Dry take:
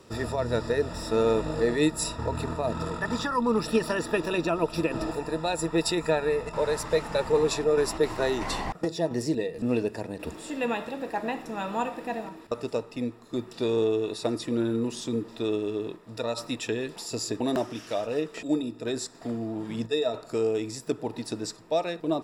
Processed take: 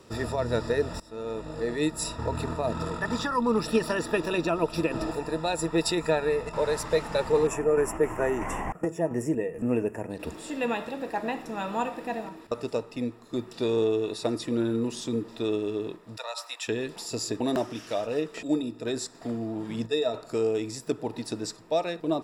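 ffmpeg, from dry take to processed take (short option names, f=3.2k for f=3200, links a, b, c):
-filter_complex "[0:a]asettb=1/sr,asplit=3[a][b][c];[a]atrim=end=7.474[d];[b]atrim=start=7.47:end=10.1,asetpts=PTS-STARTPTS,afade=t=in:d=0.004:c=qsin,afade=t=out:st=2.626:d=0.004:c=qsin,asuperstop=centerf=4200:order=4:qfactor=0.96[e];[c]atrim=start=10.096[f];[d][e]acrossfade=d=0.004:c1=hsin:c2=qsin[g];[g][f]acrossfade=d=0.004:c1=qsin:c2=hsin,asplit=3[h][i][j];[h]afade=t=out:st=16.16:d=0.02[k];[i]highpass=f=720:w=0.5412,highpass=f=720:w=1.3066,afade=t=in:st=16.16:d=0.02,afade=t=out:st=16.67:d=0.02[l];[j]afade=t=in:st=16.67:d=0.02[m];[k][l][m]amix=inputs=3:normalize=0,asplit=2[n][o];[n]atrim=end=1,asetpts=PTS-STARTPTS,afade=t=out:st=0.996:d=0.004:c=hsin:silence=0.0891251[p];[o]atrim=start=1,asetpts=PTS-STARTPTS,afade=t=in:d=1.3:silence=0.0891251[q];[p][q]concat=n=2:v=0:a=1"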